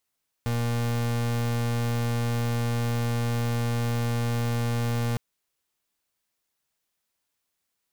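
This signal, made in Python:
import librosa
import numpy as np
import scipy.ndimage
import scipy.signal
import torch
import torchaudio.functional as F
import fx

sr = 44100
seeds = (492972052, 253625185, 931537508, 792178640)

y = fx.pulse(sr, length_s=4.71, hz=118.0, level_db=-26.0, duty_pct=36)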